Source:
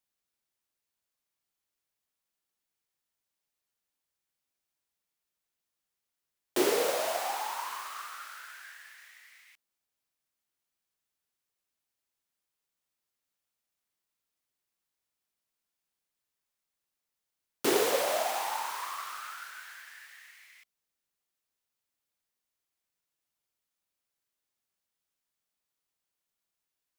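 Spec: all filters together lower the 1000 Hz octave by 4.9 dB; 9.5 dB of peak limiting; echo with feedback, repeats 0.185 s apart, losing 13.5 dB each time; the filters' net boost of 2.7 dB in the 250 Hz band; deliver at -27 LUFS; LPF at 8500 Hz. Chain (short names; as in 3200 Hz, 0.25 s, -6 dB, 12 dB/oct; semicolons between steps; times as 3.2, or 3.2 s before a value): LPF 8500 Hz; bell 250 Hz +5 dB; bell 1000 Hz -7 dB; limiter -23 dBFS; feedback echo 0.185 s, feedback 21%, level -13.5 dB; gain +9 dB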